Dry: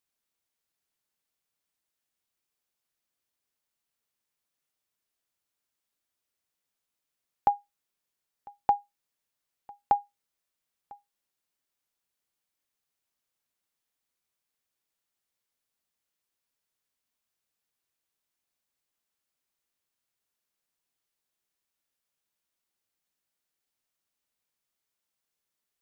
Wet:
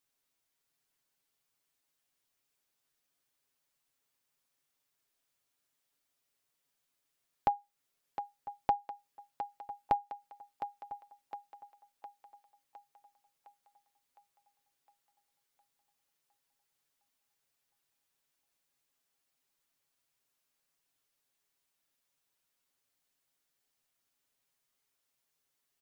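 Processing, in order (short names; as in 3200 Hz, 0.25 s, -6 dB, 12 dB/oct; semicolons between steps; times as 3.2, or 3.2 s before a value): comb 7.3 ms; compressor 2:1, threshold -35 dBFS, peak gain reduction 11 dB; on a send: thinning echo 0.71 s, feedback 58%, high-pass 280 Hz, level -9.5 dB; on the sum: gain +1 dB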